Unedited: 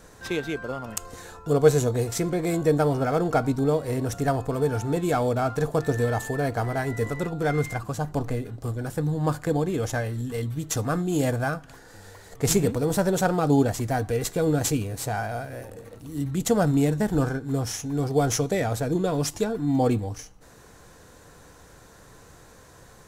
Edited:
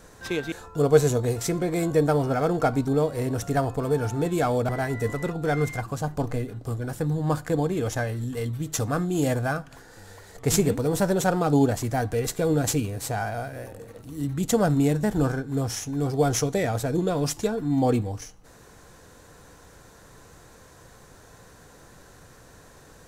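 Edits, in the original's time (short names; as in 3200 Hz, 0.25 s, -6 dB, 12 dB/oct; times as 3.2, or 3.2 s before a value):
0.52–1.23 cut
5.4–6.66 cut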